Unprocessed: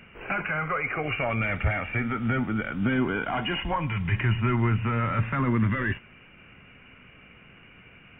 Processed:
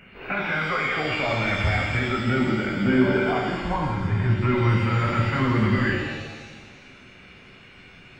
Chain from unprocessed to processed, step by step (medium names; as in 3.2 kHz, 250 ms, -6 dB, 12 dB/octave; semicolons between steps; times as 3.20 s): 3.38–4.42 s: low-pass 1.2 kHz 12 dB/octave; pitch-shifted reverb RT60 1.4 s, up +7 st, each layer -8 dB, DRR -1 dB